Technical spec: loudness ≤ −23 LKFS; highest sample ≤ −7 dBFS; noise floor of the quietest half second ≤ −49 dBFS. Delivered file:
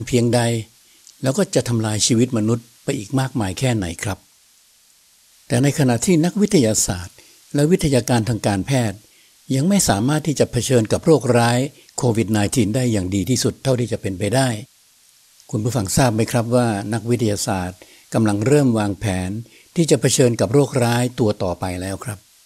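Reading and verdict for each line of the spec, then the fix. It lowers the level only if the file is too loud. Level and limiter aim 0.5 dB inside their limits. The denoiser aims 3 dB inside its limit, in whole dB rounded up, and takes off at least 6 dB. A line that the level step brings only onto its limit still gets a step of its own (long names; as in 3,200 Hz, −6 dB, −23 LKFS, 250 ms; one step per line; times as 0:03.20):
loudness −19.0 LKFS: out of spec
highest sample −2.5 dBFS: out of spec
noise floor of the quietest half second −54 dBFS: in spec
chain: level −4.5 dB
brickwall limiter −7.5 dBFS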